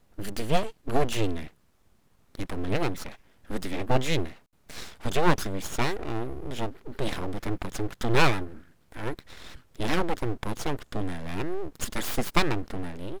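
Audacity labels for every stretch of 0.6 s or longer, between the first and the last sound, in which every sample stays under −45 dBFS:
1.500000	2.350000	silence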